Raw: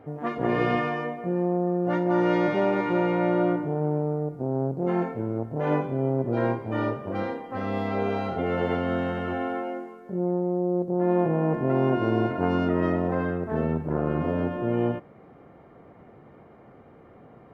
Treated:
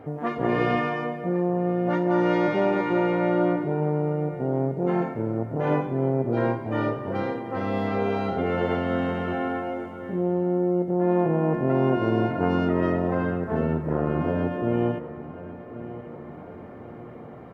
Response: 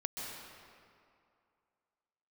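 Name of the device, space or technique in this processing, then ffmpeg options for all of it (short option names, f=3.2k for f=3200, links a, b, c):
ducked reverb: -filter_complex "[0:a]asplit=2[a][b];[b]adelay=1091,lowpass=f=2.5k:p=1,volume=-16dB,asplit=2[c][d];[d]adelay=1091,lowpass=f=2.5k:p=1,volume=0.41,asplit=2[e][f];[f]adelay=1091,lowpass=f=2.5k:p=1,volume=0.41,asplit=2[g][h];[h]adelay=1091,lowpass=f=2.5k:p=1,volume=0.41[i];[a][c][e][g][i]amix=inputs=5:normalize=0,asplit=3[j][k][l];[1:a]atrim=start_sample=2205[m];[k][m]afir=irnorm=-1:irlink=0[n];[l]apad=whole_len=805071[o];[n][o]sidechaincompress=threshold=-36dB:ratio=8:attack=16:release=1240,volume=0.5dB[p];[j][p]amix=inputs=2:normalize=0"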